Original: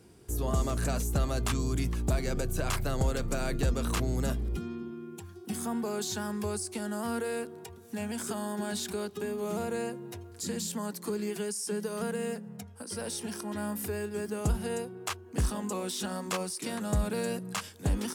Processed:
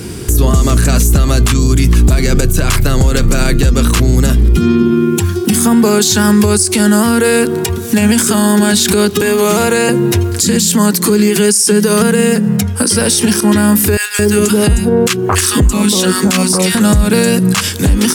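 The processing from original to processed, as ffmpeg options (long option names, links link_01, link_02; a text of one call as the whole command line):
ffmpeg -i in.wav -filter_complex "[0:a]asettb=1/sr,asplit=3[link_01][link_02][link_03];[link_01]atrim=end=9.214[link_04];[link_02]atrim=start=9.21:end=9.89,asetpts=PTS-STARTPTS,afade=type=in:duration=0.004:curve=qsin,afade=type=out:start_time=0.676:duration=0.004:curve=qsin,acrossover=split=470|7700[link_05][link_06][link_07];[link_05]acompressor=threshold=-48dB:ratio=4[link_08];[link_06]acompressor=threshold=-40dB:ratio=4[link_09];[link_07]acompressor=threshold=-56dB:ratio=4[link_10];[link_08][link_09][link_10]amix=inputs=3:normalize=0[link_11];[link_03]atrim=start=9.886[link_12];[link_04][link_11]acrossfade=duration=0.004:curve1=hsin:curve2=qsin[link_13];[link_13][link_12]acrossfade=duration=0.004:curve1=qsin:curve2=hsin,asettb=1/sr,asplit=3[link_14][link_15][link_16];[link_14]atrim=end=13.974[link_17];[link_15]atrim=start=13.97:end=16.75,asetpts=PTS-STARTPTS,afade=type=in:duration=0.004:curve=qsin,afade=type=out:start_time=2.776:duration=0.004:curve=qsin,acrossover=split=1100[link_18][link_19];[link_18]adelay=220[link_20];[link_20][link_19]amix=inputs=2:normalize=0,atrim=end_sample=122598[link_21];[link_16]atrim=start=16.746[link_22];[link_17][link_21]acrossfade=duration=0.004:curve1=hsin:curve2=qsin[link_23];[link_23][link_22]acrossfade=duration=0.004:curve1=qsin:curve2=hsin,equalizer=frequency=710:width=1:gain=-8.5,acompressor=threshold=-38dB:ratio=6,alimiter=level_in=34.5dB:limit=-1dB:release=50:level=0:latency=1,volume=-1dB" out.wav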